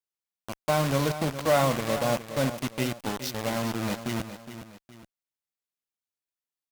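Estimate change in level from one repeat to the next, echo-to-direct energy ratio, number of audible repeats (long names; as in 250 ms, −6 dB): −8.0 dB, −11.0 dB, 2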